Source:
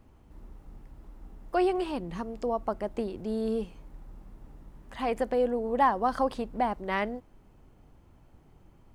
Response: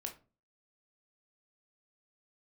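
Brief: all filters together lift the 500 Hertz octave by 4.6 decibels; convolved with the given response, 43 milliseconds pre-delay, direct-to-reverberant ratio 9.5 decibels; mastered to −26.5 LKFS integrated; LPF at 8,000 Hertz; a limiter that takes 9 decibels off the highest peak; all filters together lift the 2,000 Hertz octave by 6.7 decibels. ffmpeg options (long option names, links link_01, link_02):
-filter_complex "[0:a]lowpass=8000,equalizer=frequency=500:width_type=o:gain=5,equalizer=frequency=2000:width_type=o:gain=7.5,alimiter=limit=-18dB:level=0:latency=1,asplit=2[link_01][link_02];[1:a]atrim=start_sample=2205,adelay=43[link_03];[link_02][link_03]afir=irnorm=-1:irlink=0,volume=-7.5dB[link_04];[link_01][link_04]amix=inputs=2:normalize=0,volume=2dB"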